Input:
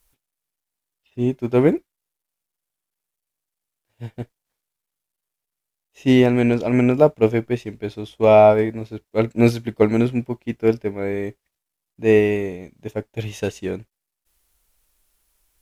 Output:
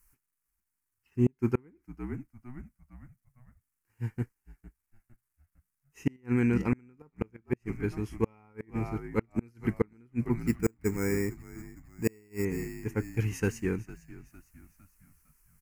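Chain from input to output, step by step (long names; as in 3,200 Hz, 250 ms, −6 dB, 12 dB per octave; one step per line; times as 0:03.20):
0:06.16–0:06.73: output level in coarse steps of 11 dB
0:10.41–0:12.45: bad sample-rate conversion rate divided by 6×, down none, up hold
phaser with its sweep stopped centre 1,500 Hz, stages 4
on a send: echo with shifted repeats 456 ms, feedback 47%, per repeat −64 Hz, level −18 dB
on the sum: gate with flip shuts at −14 dBFS, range −37 dB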